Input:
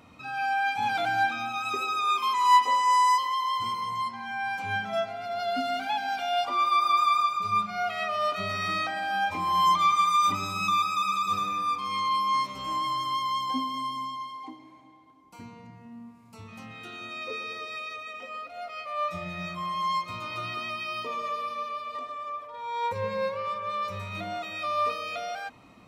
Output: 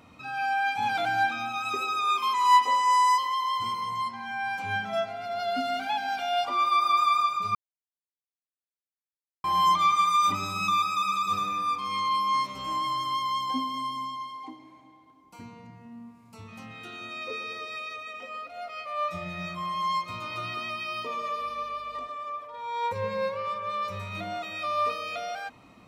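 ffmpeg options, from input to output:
ffmpeg -i in.wav -filter_complex "[0:a]asettb=1/sr,asplit=3[link_01][link_02][link_03];[link_01]atrim=end=21.404[link_04];[link_02]atrim=start=21.4:end=22.07,asetpts=PTS-STARTPTS,afade=type=in:duration=0.004:curve=qsin,afade=type=out:start_time=0.666:duration=0.004:curve=qsin,aeval=exprs='val(0)+0.001*(sin(2*PI*50*n/s)+sin(2*PI*2*50*n/s)/2+sin(2*PI*3*50*n/s)/3+sin(2*PI*4*50*n/s)/4+sin(2*PI*5*50*n/s)/5)':channel_layout=same[link_05];[link_03]atrim=start=22.066[link_06];[link_04][link_05]acrossfade=duration=0.004:curve1=hsin:curve2=qsin[link_07];[link_07][link_06]acrossfade=duration=0.004:curve1=qsin:curve2=hsin,asplit=3[link_08][link_09][link_10];[link_08]atrim=end=7.55,asetpts=PTS-STARTPTS,afade=type=out:start_time=7.546:duration=0.004:curve=hsin[link_11];[link_09]atrim=start=7.55:end=9.44,asetpts=PTS-STARTPTS,volume=0[link_12];[link_10]atrim=start=9.44,asetpts=PTS-STARTPTS,afade=type=in:duration=0.004:curve=hsin[link_13];[link_11][link_12][link_13]concat=n=3:v=0:a=1" out.wav

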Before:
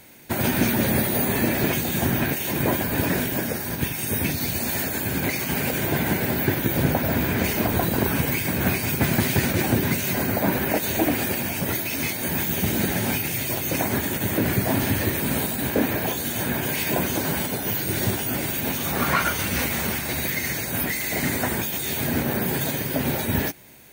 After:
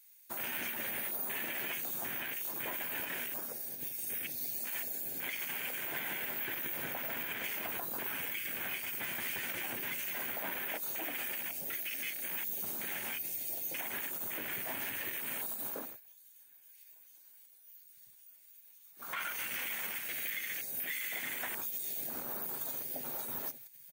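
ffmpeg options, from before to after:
ffmpeg -i in.wav -filter_complex "[0:a]asplit=2[link_01][link_02];[link_02]afade=type=in:start_time=22.79:duration=0.01,afade=type=out:start_time=23.2:duration=0.01,aecho=0:1:470|940|1410|1880|2350|2820|3290|3760|4230:0.237137|0.165996|0.116197|0.0813381|0.0569367|0.0398557|0.027899|0.0195293|0.0136705[link_03];[link_01][link_03]amix=inputs=2:normalize=0,asplit=3[link_04][link_05][link_06];[link_04]atrim=end=16.01,asetpts=PTS-STARTPTS,afade=type=out:start_time=15.73:duration=0.28:silence=0.1[link_07];[link_05]atrim=start=16.01:end=18.96,asetpts=PTS-STARTPTS,volume=-20dB[link_08];[link_06]atrim=start=18.96,asetpts=PTS-STARTPTS,afade=type=in:duration=0.28:silence=0.1[link_09];[link_07][link_08][link_09]concat=n=3:v=0:a=1,afwtdn=0.0355,aderivative,alimiter=level_in=7dB:limit=-24dB:level=0:latency=1:release=75,volume=-7dB,volume=3.5dB" out.wav

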